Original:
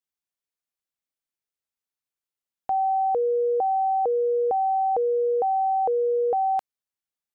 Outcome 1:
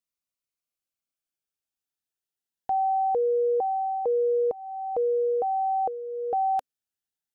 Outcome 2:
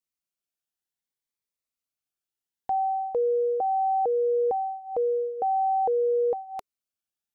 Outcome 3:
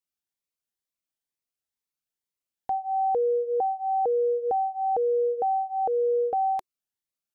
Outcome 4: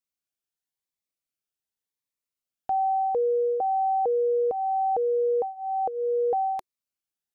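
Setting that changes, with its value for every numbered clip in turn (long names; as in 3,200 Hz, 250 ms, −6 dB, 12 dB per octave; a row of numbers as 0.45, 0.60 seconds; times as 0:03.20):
phaser whose notches keep moving one way, speed: 0.21, 0.61, 2.1, 0.89 Hertz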